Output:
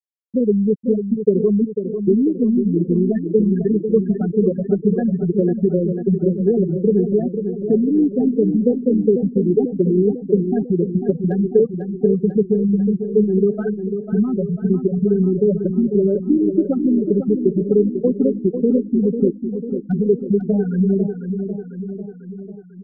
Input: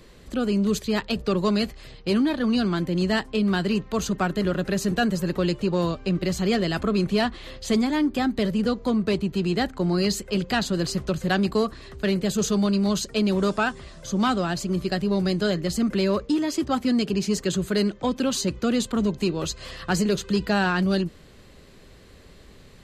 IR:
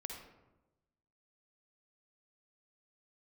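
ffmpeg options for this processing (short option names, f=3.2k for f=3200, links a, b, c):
-filter_complex "[0:a]afftfilt=real='re*gte(hypot(re,im),0.447)':imag='im*gte(hypot(re,im),0.447)':win_size=1024:overlap=0.75,acompressor=threshold=-27dB:ratio=12,aeval=exprs='0.0891*(cos(1*acos(clip(val(0)/0.0891,-1,1)))-cos(1*PI/2))+0.000708*(cos(4*acos(clip(val(0)/0.0891,-1,1)))-cos(4*PI/2))':c=same,lowshelf=f=650:t=q:w=3:g=12.5,asplit=2[a][b];[b]aecho=0:1:496|992|1488|1984|2480|2976|3472:0.398|0.235|0.139|0.0818|0.0482|0.0285|0.0168[c];[a][c]amix=inputs=2:normalize=0,volume=-2dB"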